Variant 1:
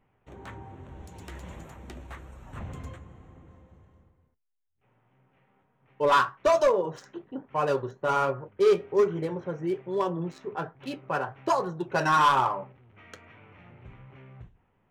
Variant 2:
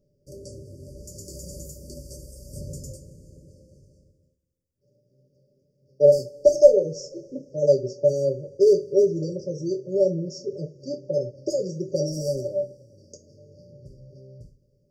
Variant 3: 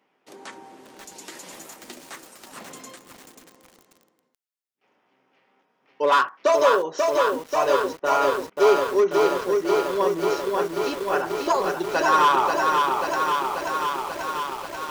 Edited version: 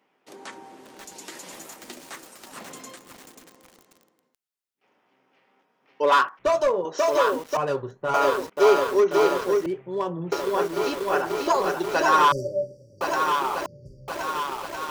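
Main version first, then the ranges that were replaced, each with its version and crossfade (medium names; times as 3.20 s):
3
6.39–6.85 s: from 1
7.57–8.14 s: from 1
9.66–10.32 s: from 1
12.32–13.01 s: from 2
13.66–14.08 s: from 2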